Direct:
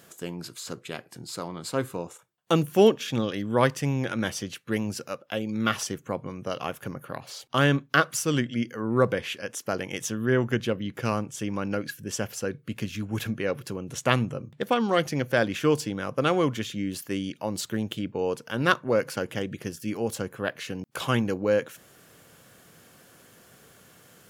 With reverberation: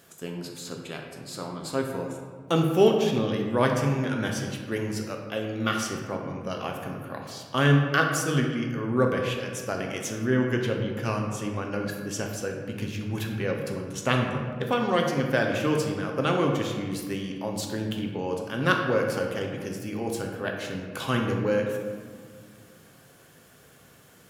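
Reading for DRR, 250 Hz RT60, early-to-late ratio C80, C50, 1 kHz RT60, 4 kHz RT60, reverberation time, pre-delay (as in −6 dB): 1.0 dB, 2.5 s, 5.5 dB, 4.0 dB, 1.7 s, 0.90 s, 1.8 s, 3 ms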